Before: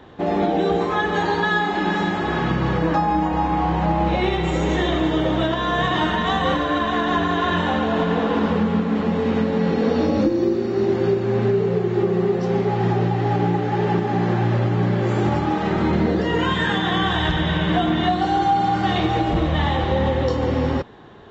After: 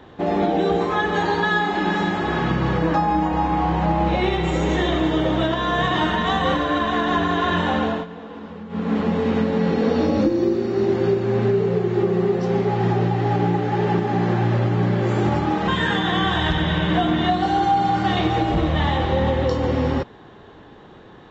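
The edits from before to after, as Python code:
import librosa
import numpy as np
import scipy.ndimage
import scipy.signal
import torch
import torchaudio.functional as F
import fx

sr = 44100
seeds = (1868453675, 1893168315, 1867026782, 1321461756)

y = fx.edit(x, sr, fx.fade_down_up(start_s=7.86, length_s=1.04, db=-16.0, fade_s=0.21),
    fx.cut(start_s=15.68, length_s=0.79), tone=tone)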